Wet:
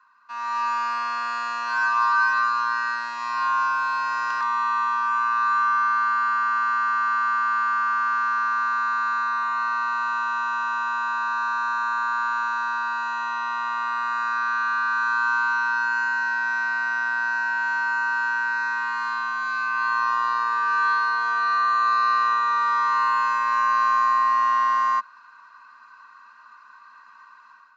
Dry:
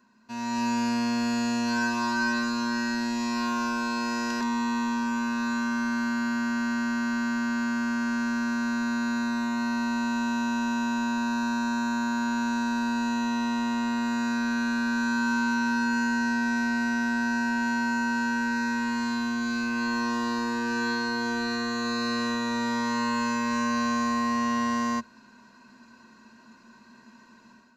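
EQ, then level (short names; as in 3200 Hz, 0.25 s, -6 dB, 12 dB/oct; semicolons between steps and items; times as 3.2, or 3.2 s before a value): resonant high-pass 1200 Hz, resonance Q 13; air absorption 130 m; 0.0 dB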